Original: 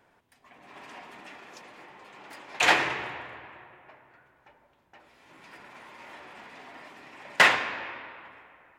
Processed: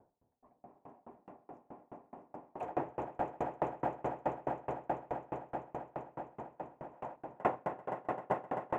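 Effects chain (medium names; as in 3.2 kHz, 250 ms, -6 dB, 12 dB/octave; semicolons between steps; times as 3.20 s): FFT filter 770 Hz 0 dB, 1.8 kHz -23 dB, 4.2 kHz -28 dB; echo with a slow build-up 130 ms, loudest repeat 8, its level -6 dB; time-frequency box 6.94–7.16 s, 490–10000 Hz +7 dB; peaking EQ 4.2 kHz -14.5 dB 1 oct; sawtooth tremolo in dB decaying 4.7 Hz, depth 32 dB; trim +3.5 dB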